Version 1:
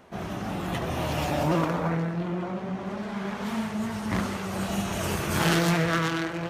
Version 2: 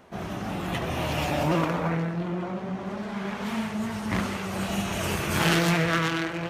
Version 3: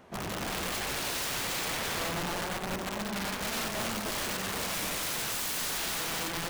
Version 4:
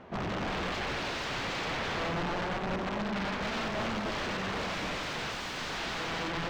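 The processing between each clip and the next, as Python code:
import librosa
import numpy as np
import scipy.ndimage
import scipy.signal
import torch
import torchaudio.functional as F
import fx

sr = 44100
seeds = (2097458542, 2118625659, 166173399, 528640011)

y1 = fx.dynamic_eq(x, sr, hz=2500.0, q=1.6, threshold_db=-44.0, ratio=4.0, max_db=4)
y2 = (np.mod(10.0 ** (27.0 / 20.0) * y1 + 1.0, 2.0) - 1.0) / 10.0 ** (27.0 / 20.0)
y2 = y2 + 10.0 ** (-8.5 / 20.0) * np.pad(y2, (int(92 * sr / 1000.0), 0))[:len(y2)]
y2 = y2 * 10.0 ** (-2.0 / 20.0)
y3 = 10.0 ** (-33.0 / 20.0) * np.tanh(y2 / 10.0 ** (-33.0 / 20.0))
y3 = fx.air_absorb(y3, sr, metres=180.0)
y3 = y3 * 10.0 ** (5.5 / 20.0)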